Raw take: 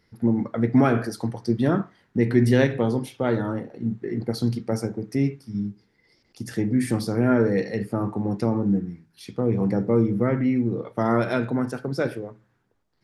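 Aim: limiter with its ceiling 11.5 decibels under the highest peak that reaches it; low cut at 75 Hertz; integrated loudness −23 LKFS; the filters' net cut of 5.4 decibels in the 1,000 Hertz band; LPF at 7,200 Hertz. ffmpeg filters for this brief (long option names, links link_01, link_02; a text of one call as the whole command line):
ffmpeg -i in.wav -af "highpass=75,lowpass=7200,equalizer=frequency=1000:width_type=o:gain=-8,volume=6dB,alimiter=limit=-12.5dB:level=0:latency=1" out.wav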